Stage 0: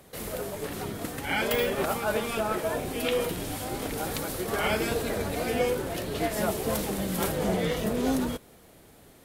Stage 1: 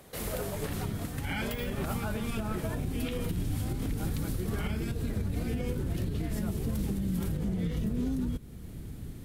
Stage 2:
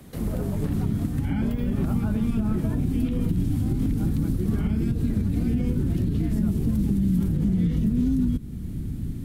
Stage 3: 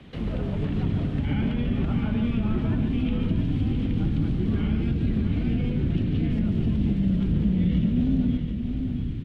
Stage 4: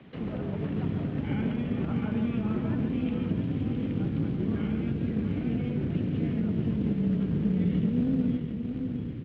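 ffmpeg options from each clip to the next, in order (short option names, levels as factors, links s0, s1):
-af "asubboost=boost=11.5:cutoff=190,acompressor=threshold=0.126:ratio=6,alimiter=limit=0.0708:level=0:latency=1:release=416"
-filter_complex "[0:a]lowshelf=f=360:t=q:w=1.5:g=9,acrossover=split=180|1200[s0][s1][s2];[s0]acompressor=threshold=0.0562:ratio=4[s3];[s1]acompressor=threshold=0.0562:ratio=4[s4];[s2]acompressor=threshold=0.00316:ratio=4[s5];[s3][s4][s5]amix=inputs=3:normalize=0,volume=1.19"
-filter_complex "[0:a]lowpass=f=3000:t=q:w=2.7,asoftclip=type=tanh:threshold=0.2,asplit=2[s0][s1];[s1]aecho=0:1:144|663|761:0.422|0.398|0.266[s2];[s0][s2]amix=inputs=2:normalize=0,volume=0.891"
-filter_complex "[0:a]tremolo=f=240:d=0.4,asplit=2[s0][s1];[s1]acrusher=bits=4:mode=log:mix=0:aa=0.000001,volume=0.335[s2];[s0][s2]amix=inputs=2:normalize=0,highpass=120,lowpass=2600,volume=0.708"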